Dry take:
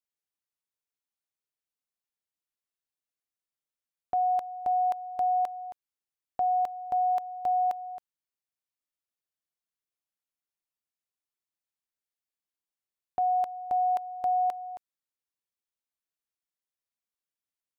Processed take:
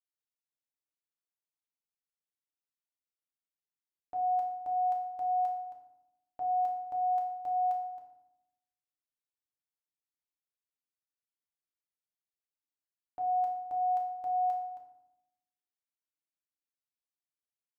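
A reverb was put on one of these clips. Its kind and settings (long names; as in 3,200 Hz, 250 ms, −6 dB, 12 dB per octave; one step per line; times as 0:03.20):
feedback delay network reverb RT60 0.84 s, low-frequency decay 1.45×, high-frequency decay 0.7×, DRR 0 dB
level −13 dB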